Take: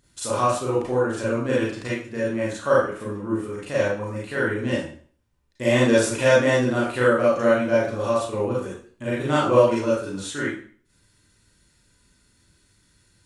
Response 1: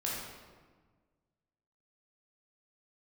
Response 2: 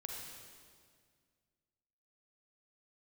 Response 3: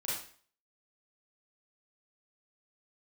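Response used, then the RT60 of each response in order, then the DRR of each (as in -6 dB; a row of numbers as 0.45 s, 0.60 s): 3; 1.5 s, 1.9 s, 0.45 s; -5.5 dB, -0.5 dB, -8.5 dB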